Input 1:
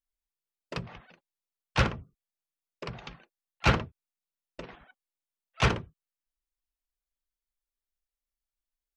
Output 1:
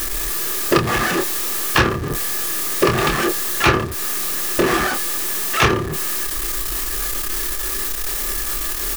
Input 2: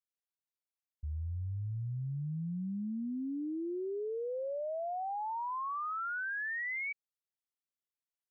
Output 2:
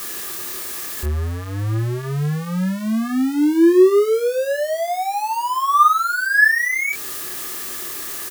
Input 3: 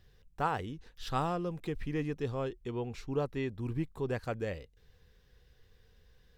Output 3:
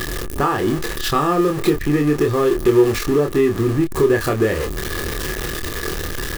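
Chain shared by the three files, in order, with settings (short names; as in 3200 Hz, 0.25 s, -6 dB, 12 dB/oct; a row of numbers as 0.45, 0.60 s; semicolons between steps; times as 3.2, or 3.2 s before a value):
zero-crossing step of -36 dBFS; high shelf 6500 Hz +7 dB; compressor 5:1, threshold -34 dBFS; doubler 27 ms -5 dB; small resonant body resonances 360/1200/1700 Hz, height 13 dB, ringing for 35 ms; match loudness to -19 LUFS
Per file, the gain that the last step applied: +16.5, +11.5, +13.5 dB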